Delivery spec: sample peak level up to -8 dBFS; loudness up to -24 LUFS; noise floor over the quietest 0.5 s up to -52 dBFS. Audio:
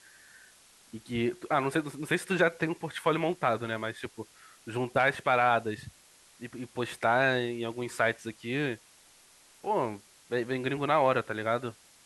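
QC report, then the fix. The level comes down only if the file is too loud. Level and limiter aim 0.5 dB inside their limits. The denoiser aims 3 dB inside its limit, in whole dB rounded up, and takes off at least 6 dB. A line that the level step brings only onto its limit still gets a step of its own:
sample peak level -11.5 dBFS: pass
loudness -29.5 LUFS: pass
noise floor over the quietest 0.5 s -59 dBFS: pass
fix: none needed

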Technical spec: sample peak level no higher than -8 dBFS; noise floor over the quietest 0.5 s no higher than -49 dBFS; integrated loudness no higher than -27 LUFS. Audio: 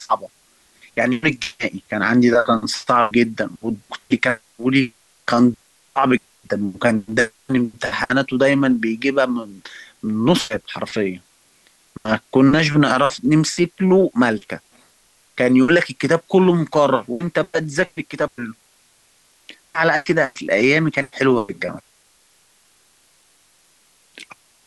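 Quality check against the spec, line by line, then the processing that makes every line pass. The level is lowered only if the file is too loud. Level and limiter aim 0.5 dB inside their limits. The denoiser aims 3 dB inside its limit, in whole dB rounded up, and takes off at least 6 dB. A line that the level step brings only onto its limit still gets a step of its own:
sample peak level -4.0 dBFS: fail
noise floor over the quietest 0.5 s -57 dBFS: pass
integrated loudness -18.5 LUFS: fail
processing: trim -9 dB

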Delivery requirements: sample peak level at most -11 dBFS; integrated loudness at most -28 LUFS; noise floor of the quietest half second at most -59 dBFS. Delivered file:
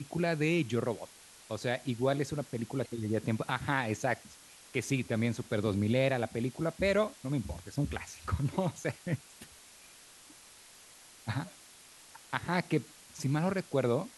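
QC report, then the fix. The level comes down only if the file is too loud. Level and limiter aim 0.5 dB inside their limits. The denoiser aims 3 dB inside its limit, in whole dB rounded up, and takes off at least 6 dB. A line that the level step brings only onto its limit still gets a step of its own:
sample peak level -13.0 dBFS: pass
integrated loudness -33.0 LUFS: pass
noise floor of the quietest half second -56 dBFS: fail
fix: noise reduction 6 dB, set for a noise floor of -56 dBFS

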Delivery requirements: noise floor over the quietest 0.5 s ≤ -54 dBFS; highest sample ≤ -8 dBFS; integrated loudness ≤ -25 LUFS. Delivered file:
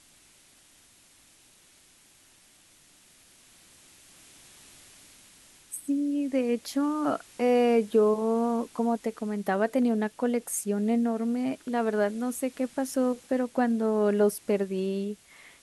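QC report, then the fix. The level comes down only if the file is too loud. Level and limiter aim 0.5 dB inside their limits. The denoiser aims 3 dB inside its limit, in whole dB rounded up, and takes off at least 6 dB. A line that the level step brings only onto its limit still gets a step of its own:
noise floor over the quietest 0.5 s -59 dBFS: pass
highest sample -12.5 dBFS: pass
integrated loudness -27.5 LUFS: pass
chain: none needed

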